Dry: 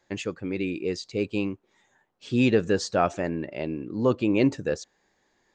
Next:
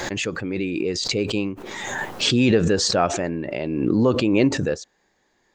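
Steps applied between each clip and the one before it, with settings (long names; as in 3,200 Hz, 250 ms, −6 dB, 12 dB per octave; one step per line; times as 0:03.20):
background raised ahead of every attack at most 26 dB per second
level +2.5 dB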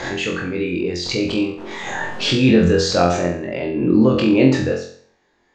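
high-frequency loss of the air 100 metres
on a send: flutter between parallel walls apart 3.9 metres, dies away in 0.52 s
on the sum: level +1 dB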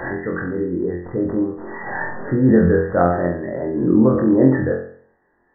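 linear-phase brick-wall low-pass 2,000 Hz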